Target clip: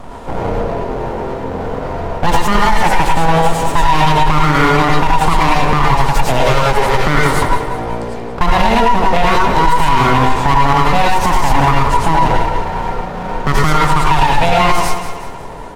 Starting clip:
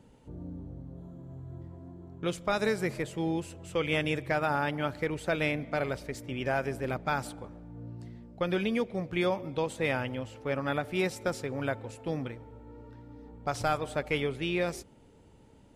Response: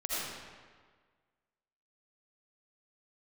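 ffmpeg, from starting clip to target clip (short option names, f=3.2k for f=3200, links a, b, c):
-filter_complex "[0:a]equalizer=f=470:w=0.93:g=15,acrossover=split=120|1200[a][b][c];[a]acompressor=threshold=-53dB:ratio=4[d];[b]acompressor=threshold=-24dB:ratio=4[e];[c]acompressor=threshold=-38dB:ratio=4[f];[d][e][f]amix=inputs=3:normalize=0,asettb=1/sr,asplit=3[g][h][i];[g]atrim=end=6.404[j];[h]atrim=start=6.4:end=7.06,asetpts=PTS-STARTPTS,afade=t=in:d=0.004:c=qsin,afade=t=out:st=0.656:d=0.004:c=qsin,aeval=exprs='(tanh(20*val(0)+0.3)-tanh(0.3))/20':c=same[k];[i]atrim=start=7.056[l];[j][k]acrossfade=d=0.004:c1=hsin:c2=qsin[m];[m][l]acrossfade=d=0.004:c1=qsin:c2=hsin,aeval=exprs='abs(val(0))':c=same,aecho=1:1:183|366|549|732:0.282|0.121|0.0521|0.0224[n];[1:a]atrim=start_sample=2205,atrim=end_sample=3969,asetrate=32634,aresample=44100[o];[n][o]afir=irnorm=-1:irlink=0,alimiter=level_in=22dB:limit=-1dB:release=50:level=0:latency=1,volume=-1dB"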